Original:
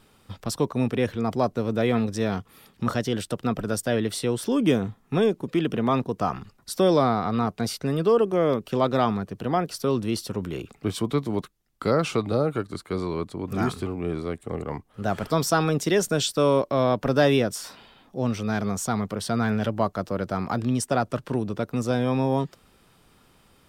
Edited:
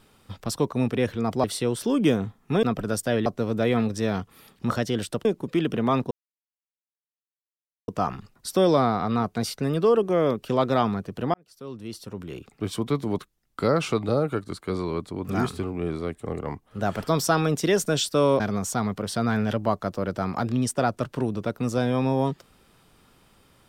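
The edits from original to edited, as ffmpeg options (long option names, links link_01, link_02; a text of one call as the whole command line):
ffmpeg -i in.wav -filter_complex "[0:a]asplit=8[link_01][link_02][link_03][link_04][link_05][link_06][link_07][link_08];[link_01]atrim=end=1.442[link_09];[link_02]atrim=start=4.058:end=5.252[link_10];[link_03]atrim=start=3.428:end=4.062[link_11];[link_04]atrim=start=1.438:end=3.432[link_12];[link_05]atrim=start=5.248:end=6.11,asetpts=PTS-STARTPTS,afade=type=out:start_time=0.858:duration=0.004:curve=hsin,apad=pad_dur=1.77[link_13];[link_06]atrim=start=6.11:end=9.57,asetpts=PTS-STARTPTS,afade=type=in:duration=0.004:curve=hsin,afade=type=out:start_time=3.456:duration=0.004:curve=hsin[link_14];[link_07]atrim=start=9.57:end=16.632,asetpts=PTS-STARTPTS,afade=type=in:duration=1.7[link_15];[link_08]atrim=start=18.528[link_16];[link_09][link_10]acrossfade=duration=0.004:curve1=hsin:curve2=hsin[link_17];[link_17][link_11]acrossfade=duration=0.004:curve1=hsin:curve2=hsin[link_18];[link_18][link_12]acrossfade=duration=0.004:curve1=hsin:curve2=hsin[link_19];[link_13][link_14][link_15]concat=n=3:v=0:a=1[link_20];[link_19][link_20]acrossfade=duration=0.004:curve1=hsin:curve2=hsin[link_21];[link_21][link_16]acrossfade=duration=0.004:curve1=hsin:curve2=hsin" out.wav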